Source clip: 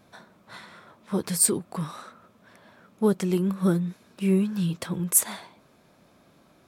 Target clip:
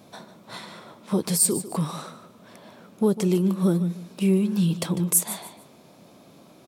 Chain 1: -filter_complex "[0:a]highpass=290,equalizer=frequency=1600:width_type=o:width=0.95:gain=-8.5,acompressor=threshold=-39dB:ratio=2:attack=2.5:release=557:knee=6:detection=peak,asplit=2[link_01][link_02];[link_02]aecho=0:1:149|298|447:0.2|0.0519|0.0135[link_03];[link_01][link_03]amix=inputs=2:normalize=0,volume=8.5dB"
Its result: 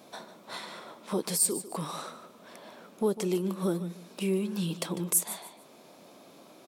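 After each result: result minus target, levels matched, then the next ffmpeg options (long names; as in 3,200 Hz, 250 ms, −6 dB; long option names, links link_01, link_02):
downward compressor: peak gain reduction +5.5 dB; 125 Hz band −3.5 dB
-filter_complex "[0:a]highpass=290,equalizer=frequency=1600:width_type=o:width=0.95:gain=-8.5,acompressor=threshold=-28.5dB:ratio=2:attack=2.5:release=557:knee=6:detection=peak,asplit=2[link_01][link_02];[link_02]aecho=0:1:149|298|447:0.2|0.0519|0.0135[link_03];[link_01][link_03]amix=inputs=2:normalize=0,volume=8.5dB"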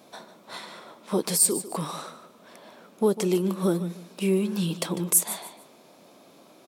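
125 Hz band −4.5 dB
-filter_complex "[0:a]highpass=120,equalizer=frequency=1600:width_type=o:width=0.95:gain=-8.5,acompressor=threshold=-28.5dB:ratio=2:attack=2.5:release=557:knee=6:detection=peak,asplit=2[link_01][link_02];[link_02]aecho=0:1:149|298|447:0.2|0.0519|0.0135[link_03];[link_01][link_03]amix=inputs=2:normalize=0,volume=8.5dB"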